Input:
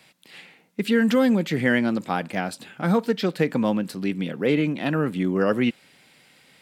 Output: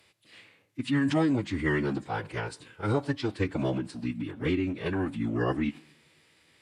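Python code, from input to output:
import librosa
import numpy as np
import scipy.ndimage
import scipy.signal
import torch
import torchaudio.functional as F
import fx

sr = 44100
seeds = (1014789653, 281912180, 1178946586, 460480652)

y = fx.rev_double_slope(x, sr, seeds[0], early_s=0.74, late_s=1.9, knee_db=-17, drr_db=19.0)
y = fx.pitch_keep_formants(y, sr, semitones=-8.5)
y = F.gain(torch.from_numpy(y), -6.0).numpy()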